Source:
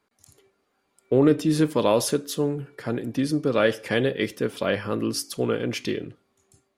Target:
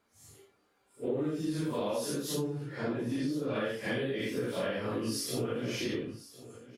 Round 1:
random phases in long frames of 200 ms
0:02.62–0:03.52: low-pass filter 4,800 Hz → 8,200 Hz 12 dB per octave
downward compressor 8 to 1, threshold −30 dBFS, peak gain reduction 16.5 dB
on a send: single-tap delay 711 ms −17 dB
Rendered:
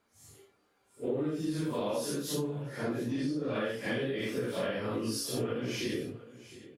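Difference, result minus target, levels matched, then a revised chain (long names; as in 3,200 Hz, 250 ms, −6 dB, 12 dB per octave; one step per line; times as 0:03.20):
echo 342 ms early
random phases in long frames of 200 ms
0:02.62–0:03.52: low-pass filter 4,800 Hz → 8,200 Hz 12 dB per octave
downward compressor 8 to 1, threshold −30 dBFS, peak gain reduction 16.5 dB
on a send: single-tap delay 1,053 ms −17 dB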